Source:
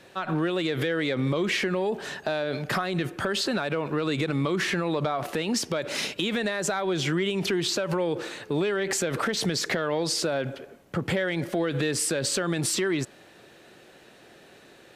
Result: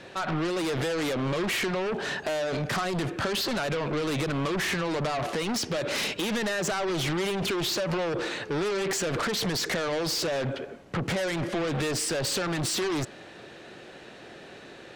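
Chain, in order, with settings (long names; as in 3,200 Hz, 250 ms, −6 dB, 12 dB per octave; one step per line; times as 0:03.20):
Bessel low-pass filter 5,600 Hz, order 2
in parallel at −12 dB: sine wavefolder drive 14 dB, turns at −16.5 dBFS
on the sum: level −3 dB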